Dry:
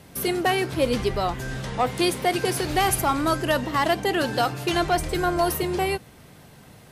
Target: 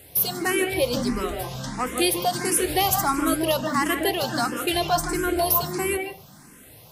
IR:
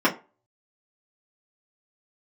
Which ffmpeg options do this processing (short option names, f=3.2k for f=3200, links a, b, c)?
-filter_complex "[0:a]aemphasis=mode=production:type=50kf,asplit=2[a][b];[1:a]atrim=start_sample=2205,adelay=144[c];[b][c]afir=irnorm=-1:irlink=0,volume=-22dB[d];[a][d]amix=inputs=2:normalize=0,asplit=2[e][f];[f]afreqshift=1.5[g];[e][g]amix=inputs=2:normalize=1"